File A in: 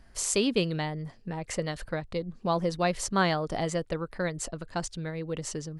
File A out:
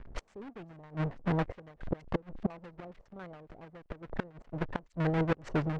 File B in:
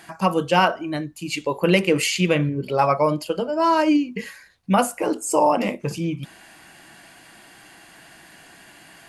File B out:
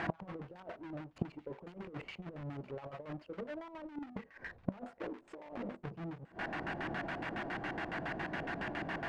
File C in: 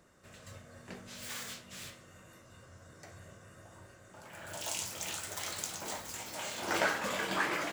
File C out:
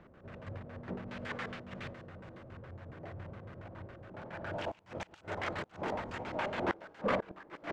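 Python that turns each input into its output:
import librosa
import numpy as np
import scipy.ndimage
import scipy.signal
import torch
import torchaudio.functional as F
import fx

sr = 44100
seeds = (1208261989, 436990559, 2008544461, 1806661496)

p1 = fx.halfwave_hold(x, sr)
p2 = fx.over_compress(p1, sr, threshold_db=-18.0, ratio=-0.5)
p3 = fx.gate_flip(p2, sr, shuts_db=-23.0, range_db=-27)
p4 = p3 + fx.echo_wet_highpass(p3, sr, ms=499, feedback_pct=33, hz=3800.0, wet_db=-14.0, dry=0)
p5 = fx.filter_lfo_lowpass(p4, sr, shape='square', hz=7.2, low_hz=600.0, high_hz=2000.0, q=1.0)
y = F.gain(torch.from_numpy(p5), 2.0).numpy()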